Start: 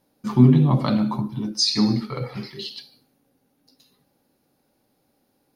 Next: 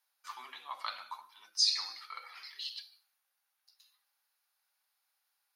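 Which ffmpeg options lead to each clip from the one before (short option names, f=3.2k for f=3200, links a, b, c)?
-af "highpass=f=1.1k:w=0.5412,highpass=f=1.1k:w=1.3066,volume=-6.5dB"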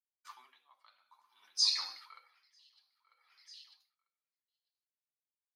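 -af "agate=range=-33dB:threshold=-57dB:ratio=3:detection=peak,aecho=1:1:945|1890:0.168|0.0403,aeval=exprs='val(0)*pow(10,-26*(0.5-0.5*cos(2*PI*0.57*n/s))/20)':c=same"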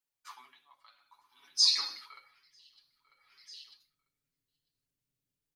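-af "aecho=1:1:7.1:0.65,asubboost=boost=11.5:cutoff=250,volume=3.5dB"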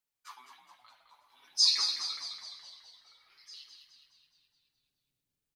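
-filter_complex "[0:a]asplit=8[a][b][c][d][e][f][g][h];[b]adelay=210,afreqshift=-68,volume=-7.5dB[i];[c]adelay=420,afreqshift=-136,volume=-12.7dB[j];[d]adelay=630,afreqshift=-204,volume=-17.9dB[k];[e]adelay=840,afreqshift=-272,volume=-23.1dB[l];[f]adelay=1050,afreqshift=-340,volume=-28.3dB[m];[g]adelay=1260,afreqshift=-408,volume=-33.5dB[n];[h]adelay=1470,afreqshift=-476,volume=-38.7dB[o];[a][i][j][k][l][m][n][o]amix=inputs=8:normalize=0"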